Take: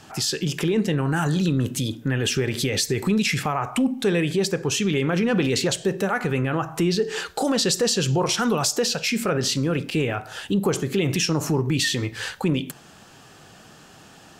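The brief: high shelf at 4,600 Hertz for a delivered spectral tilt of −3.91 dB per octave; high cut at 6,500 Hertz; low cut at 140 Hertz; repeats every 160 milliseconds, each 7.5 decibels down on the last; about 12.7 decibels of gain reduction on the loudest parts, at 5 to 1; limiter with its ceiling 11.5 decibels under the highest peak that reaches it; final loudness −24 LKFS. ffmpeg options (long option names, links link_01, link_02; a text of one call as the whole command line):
ffmpeg -i in.wav -af "highpass=140,lowpass=6500,highshelf=frequency=4600:gain=8.5,acompressor=threshold=-32dB:ratio=5,alimiter=level_in=5dB:limit=-24dB:level=0:latency=1,volume=-5dB,aecho=1:1:160|320|480|640|800:0.422|0.177|0.0744|0.0312|0.0131,volume=13dB" out.wav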